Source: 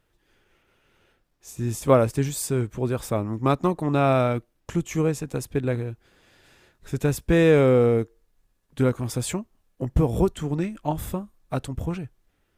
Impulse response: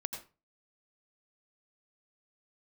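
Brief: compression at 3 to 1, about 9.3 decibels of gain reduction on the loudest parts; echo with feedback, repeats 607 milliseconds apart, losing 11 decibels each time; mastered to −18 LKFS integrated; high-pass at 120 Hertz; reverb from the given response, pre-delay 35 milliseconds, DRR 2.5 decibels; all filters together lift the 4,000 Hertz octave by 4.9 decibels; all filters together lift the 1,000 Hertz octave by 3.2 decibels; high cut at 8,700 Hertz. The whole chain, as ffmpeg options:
-filter_complex "[0:a]highpass=120,lowpass=8700,equalizer=frequency=1000:width_type=o:gain=4,equalizer=frequency=4000:width_type=o:gain=6,acompressor=threshold=-22dB:ratio=3,aecho=1:1:607|1214|1821:0.282|0.0789|0.0221,asplit=2[link_01][link_02];[1:a]atrim=start_sample=2205,adelay=35[link_03];[link_02][link_03]afir=irnorm=-1:irlink=0,volume=-3dB[link_04];[link_01][link_04]amix=inputs=2:normalize=0,volume=8.5dB"

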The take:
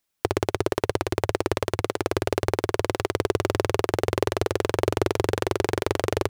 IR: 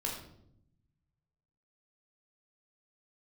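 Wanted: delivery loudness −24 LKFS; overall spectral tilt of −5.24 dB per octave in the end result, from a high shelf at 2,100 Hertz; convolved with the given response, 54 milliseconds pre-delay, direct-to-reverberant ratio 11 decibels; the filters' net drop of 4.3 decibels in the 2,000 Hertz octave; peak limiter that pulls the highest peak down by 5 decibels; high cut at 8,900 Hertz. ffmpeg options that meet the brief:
-filter_complex "[0:a]lowpass=8900,equalizer=frequency=2000:width_type=o:gain=-8,highshelf=frequency=2100:gain=4,alimiter=limit=-9.5dB:level=0:latency=1,asplit=2[link_01][link_02];[1:a]atrim=start_sample=2205,adelay=54[link_03];[link_02][link_03]afir=irnorm=-1:irlink=0,volume=-14dB[link_04];[link_01][link_04]amix=inputs=2:normalize=0,volume=5dB"

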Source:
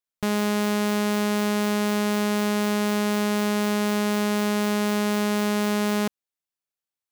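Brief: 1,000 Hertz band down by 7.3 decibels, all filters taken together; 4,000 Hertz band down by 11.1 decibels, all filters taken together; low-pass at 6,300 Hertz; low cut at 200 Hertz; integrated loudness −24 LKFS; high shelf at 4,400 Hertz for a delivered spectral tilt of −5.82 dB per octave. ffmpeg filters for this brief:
ffmpeg -i in.wav -af "highpass=200,lowpass=6300,equalizer=frequency=1000:width_type=o:gain=-8,equalizer=frequency=4000:width_type=o:gain=-9,highshelf=frequency=4400:gain=-9,volume=3.5dB" out.wav

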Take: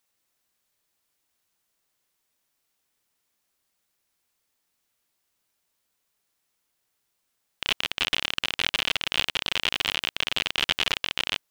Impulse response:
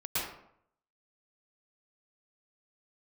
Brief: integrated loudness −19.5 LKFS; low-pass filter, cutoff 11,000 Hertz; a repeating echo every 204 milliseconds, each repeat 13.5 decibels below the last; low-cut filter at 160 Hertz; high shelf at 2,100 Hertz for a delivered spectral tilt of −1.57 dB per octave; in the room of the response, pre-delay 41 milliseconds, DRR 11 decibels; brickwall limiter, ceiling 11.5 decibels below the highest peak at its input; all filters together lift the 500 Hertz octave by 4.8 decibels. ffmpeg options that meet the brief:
-filter_complex "[0:a]highpass=160,lowpass=11000,equalizer=frequency=500:width_type=o:gain=6.5,highshelf=frequency=2100:gain=-6.5,alimiter=limit=-17dB:level=0:latency=1,aecho=1:1:204|408:0.211|0.0444,asplit=2[link_01][link_02];[1:a]atrim=start_sample=2205,adelay=41[link_03];[link_02][link_03]afir=irnorm=-1:irlink=0,volume=-17.5dB[link_04];[link_01][link_04]amix=inputs=2:normalize=0,volume=15.5dB"

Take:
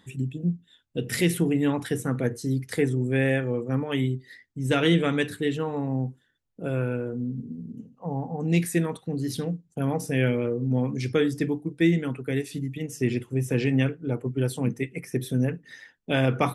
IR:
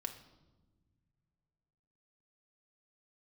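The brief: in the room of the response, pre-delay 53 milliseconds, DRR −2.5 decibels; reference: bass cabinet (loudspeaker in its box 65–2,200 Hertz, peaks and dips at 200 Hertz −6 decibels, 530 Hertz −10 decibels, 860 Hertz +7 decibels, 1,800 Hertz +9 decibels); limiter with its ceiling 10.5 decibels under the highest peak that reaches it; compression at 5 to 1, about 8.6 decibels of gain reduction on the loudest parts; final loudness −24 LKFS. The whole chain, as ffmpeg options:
-filter_complex "[0:a]acompressor=threshold=-27dB:ratio=5,alimiter=level_in=2.5dB:limit=-24dB:level=0:latency=1,volume=-2.5dB,asplit=2[link_01][link_02];[1:a]atrim=start_sample=2205,adelay=53[link_03];[link_02][link_03]afir=irnorm=-1:irlink=0,volume=4dB[link_04];[link_01][link_04]amix=inputs=2:normalize=0,highpass=frequency=65:width=0.5412,highpass=frequency=65:width=1.3066,equalizer=frequency=200:width_type=q:width=4:gain=-6,equalizer=frequency=530:width_type=q:width=4:gain=-10,equalizer=frequency=860:width_type=q:width=4:gain=7,equalizer=frequency=1800:width_type=q:width=4:gain=9,lowpass=frequency=2200:width=0.5412,lowpass=frequency=2200:width=1.3066,volume=8.5dB"

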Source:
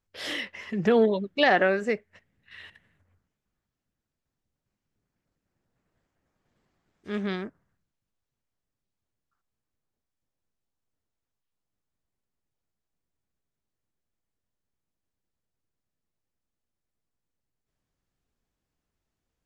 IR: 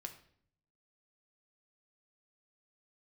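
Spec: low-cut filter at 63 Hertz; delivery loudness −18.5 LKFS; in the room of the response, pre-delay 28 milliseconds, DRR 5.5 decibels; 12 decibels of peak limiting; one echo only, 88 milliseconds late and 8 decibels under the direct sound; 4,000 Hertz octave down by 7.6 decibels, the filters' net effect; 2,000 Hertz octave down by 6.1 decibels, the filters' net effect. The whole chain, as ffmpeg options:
-filter_complex "[0:a]highpass=63,equalizer=frequency=2000:width_type=o:gain=-6,equalizer=frequency=4000:width_type=o:gain=-8,alimiter=limit=-23dB:level=0:latency=1,aecho=1:1:88:0.398,asplit=2[link_01][link_02];[1:a]atrim=start_sample=2205,adelay=28[link_03];[link_02][link_03]afir=irnorm=-1:irlink=0,volume=-2dB[link_04];[link_01][link_04]amix=inputs=2:normalize=0,volume=14dB"

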